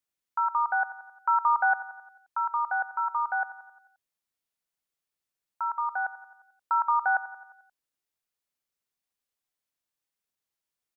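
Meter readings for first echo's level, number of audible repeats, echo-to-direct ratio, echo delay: -16.0 dB, 5, -14.5 dB, 88 ms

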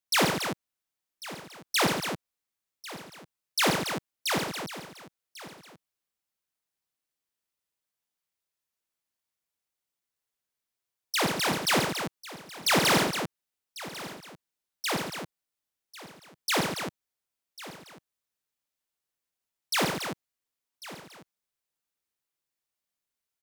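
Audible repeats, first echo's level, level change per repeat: 11, -6.0 dB, no steady repeat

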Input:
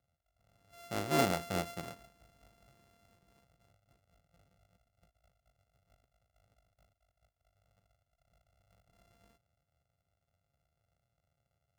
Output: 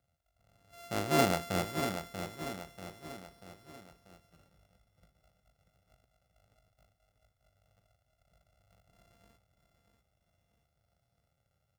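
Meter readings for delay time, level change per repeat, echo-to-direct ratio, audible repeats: 0.638 s, -6.5 dB, -6.5 dB, 4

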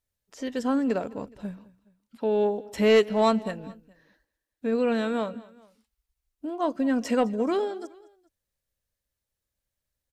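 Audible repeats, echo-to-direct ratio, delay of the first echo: 2, -20.0 dB, 0.209 s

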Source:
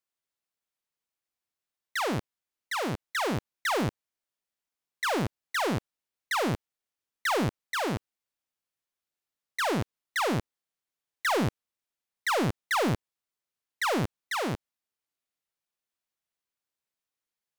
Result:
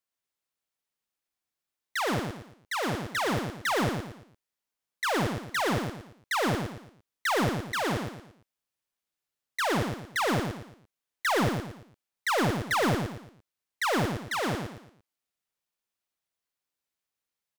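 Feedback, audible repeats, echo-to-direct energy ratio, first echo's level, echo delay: 35%, 4, -4.5 dB, -5.0 dB, 0.114 s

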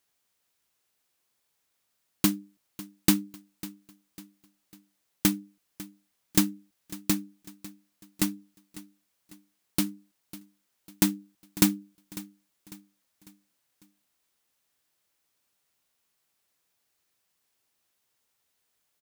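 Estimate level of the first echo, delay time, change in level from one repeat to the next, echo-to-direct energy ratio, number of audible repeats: -18.0 dB, 0.549 s, -7.5 dB, -17.0 dB, 3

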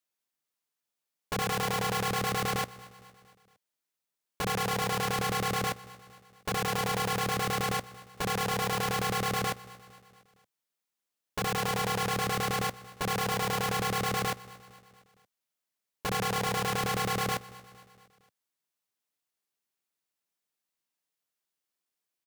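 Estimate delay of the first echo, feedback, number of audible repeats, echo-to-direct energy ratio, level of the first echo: 0.23 s, 55%, 3, -18.5 dB, -20.0 dB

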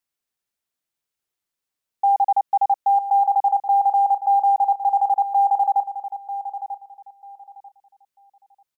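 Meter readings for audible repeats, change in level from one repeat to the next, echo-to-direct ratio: 2, -13.0 dB, -11.5 dB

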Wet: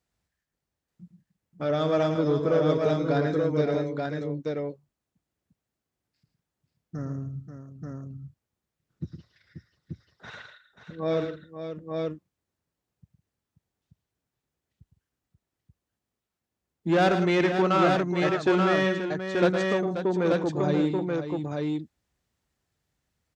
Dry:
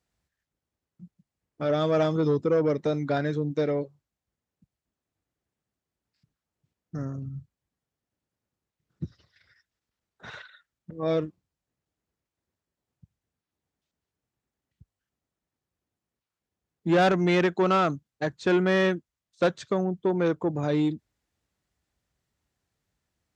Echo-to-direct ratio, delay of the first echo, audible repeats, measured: -1.5 dB, 0.11 s, 4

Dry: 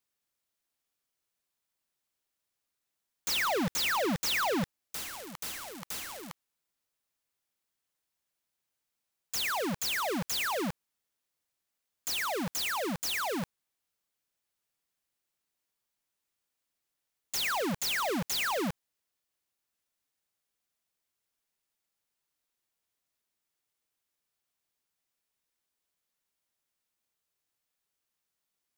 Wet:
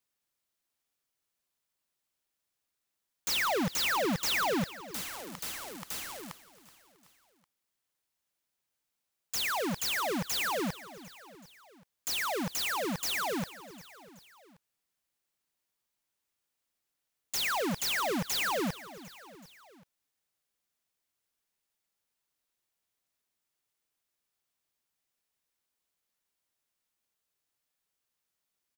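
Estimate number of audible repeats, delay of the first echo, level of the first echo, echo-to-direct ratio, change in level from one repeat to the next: 3, 0.376 s, -17.5 dB, -16.0 dB, -4.5 dB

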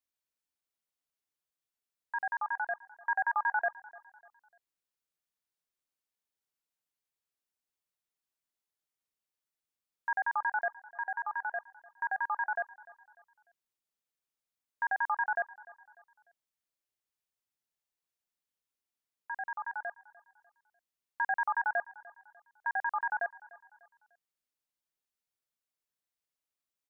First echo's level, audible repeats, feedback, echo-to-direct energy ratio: -21.0 dB, 2, 40%, -20.5 dB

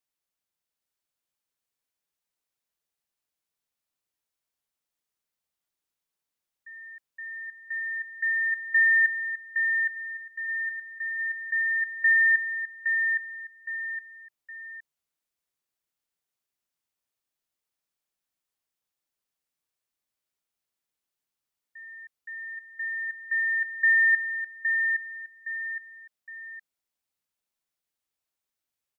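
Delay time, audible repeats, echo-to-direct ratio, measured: 0.815 s, 3, -4.5 dB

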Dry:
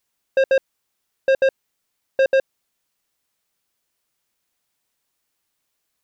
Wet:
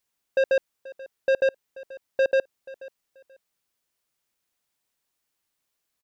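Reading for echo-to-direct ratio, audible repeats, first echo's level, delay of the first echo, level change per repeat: -19.5 dB, 2, -19.5 dB, 0.483 s, -13.0 dB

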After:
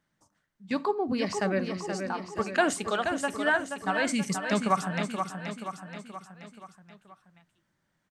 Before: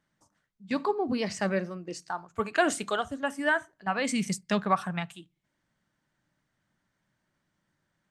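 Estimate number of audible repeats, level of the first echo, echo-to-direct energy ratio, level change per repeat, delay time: 5, -6.5 dB, -5.0 dB, -5.5 dB, 0.478 s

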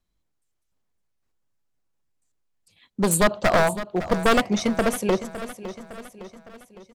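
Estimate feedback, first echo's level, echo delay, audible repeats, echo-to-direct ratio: 51%, -13.5 dB, 0.559 s, 4, -12.0 dB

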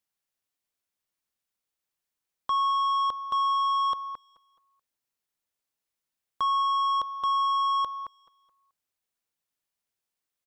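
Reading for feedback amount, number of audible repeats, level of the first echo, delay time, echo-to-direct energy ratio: 40%, 2, -20.5 dB, 0.214 s, -20.0 dB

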